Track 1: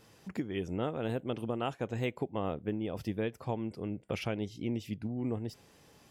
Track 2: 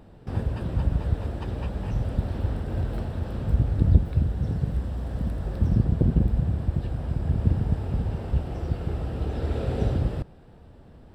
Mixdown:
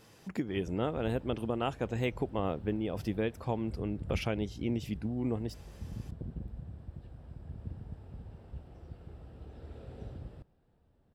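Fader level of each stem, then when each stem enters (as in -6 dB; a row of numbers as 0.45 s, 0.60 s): +1.5 dB, -20.0 dB; 0.00 s, 0.20 s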